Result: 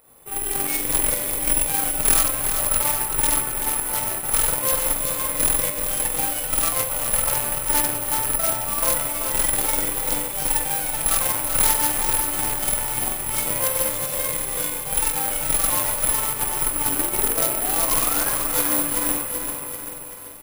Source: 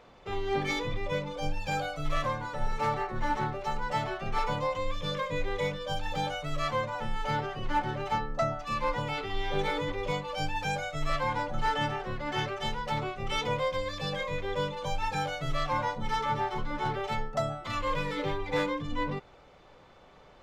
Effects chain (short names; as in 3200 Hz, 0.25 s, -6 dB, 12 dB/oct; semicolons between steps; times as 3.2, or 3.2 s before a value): rattling part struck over -37 dBFS, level -29 dBFS; painted sound rise, 16.87–18.3, 260–1700 Hz -32 dBFS; doubler 44 ms -4 dB; pump 158 bpm, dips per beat 1, -5 dB, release 0.158 s; diffused feedback echo 0.533 s, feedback 45%, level -9.5 dB; on a send at -3.5 dB: reverb RT60 2.0 s, pre-delay 3 ms; on the sum: added harmonics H 6 -7 dB, 8 -8 dB, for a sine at -15 dBFS; careless resampling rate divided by 4×, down none, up zero stuff; lo-fi delay 0.385 s, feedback 55%, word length 6-bit, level -7 dB; gain -4.5 dB